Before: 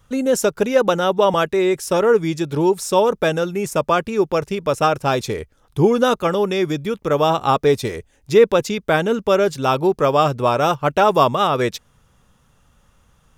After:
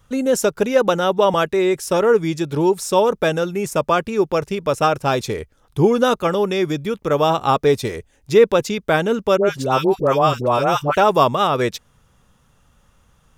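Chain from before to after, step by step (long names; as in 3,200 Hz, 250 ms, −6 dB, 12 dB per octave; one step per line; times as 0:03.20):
0:09.37–0:10.97: all-pass dispersion highs, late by 82 ms, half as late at 910 Hz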